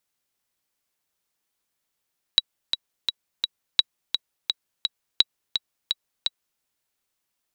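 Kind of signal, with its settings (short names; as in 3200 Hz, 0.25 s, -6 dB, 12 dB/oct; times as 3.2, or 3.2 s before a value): metronome 170 bpm, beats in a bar 4, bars 3, 3890 Hz, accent 7.5 dB -2 dBFS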